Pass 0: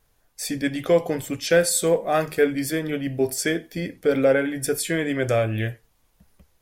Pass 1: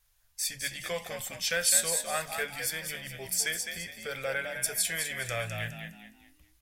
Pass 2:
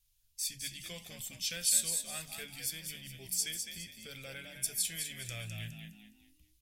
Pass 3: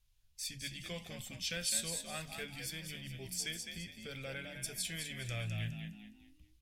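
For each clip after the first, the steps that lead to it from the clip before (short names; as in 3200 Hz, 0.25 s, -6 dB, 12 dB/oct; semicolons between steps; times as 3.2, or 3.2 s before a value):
passive tone stack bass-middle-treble 10-0-10; on a send: frequency-shifting echo 0.207 s, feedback 35%, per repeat +49 Hz, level -6.5 dB
band shelf 930 Hz -13.5 dB 2.5 oct; gain -4 dB
LPF 2100 Hz 6 dB/oct; gain +4.5 dB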